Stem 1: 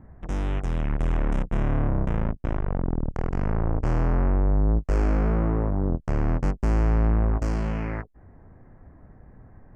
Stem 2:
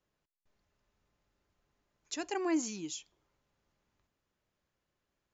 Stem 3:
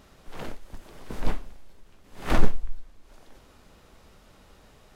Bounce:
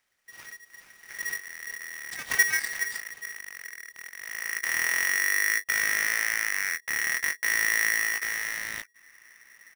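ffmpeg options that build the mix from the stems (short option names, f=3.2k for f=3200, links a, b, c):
-filter_complex "[0:a]acompressor=mode=upward:threshold=-43dB:ratio=2.5,adelay=800,volume=-1.5dB,afade=t=in:st=4.2:d=0.59:silence=0.266073[a];[1:a]asoftclip=type=tanh:threshold=-23.5dB,volume=2.5dB[b];[2:a]highshelf=f=3.2k:g=10,agate=range=-10dB:threshold=-46dB:ratio=16:detection=peak,volume=-8.5dB,asplit=2[c][d];[d]volume=-9dB,aecho=0:1:417|834|1251|1668|2085:1|0.38|0.144|0.0549|0.0209[e];[a][b][c][e]amix=inputs=4:normalize=0,aeval=exprs='(tanh(6.31*val(0)+0.8)-tanh(0.8))/6.31':c=same,aeval=exprs='val(0)*sgn(sin(2*PI*1900*n/s))':c=same"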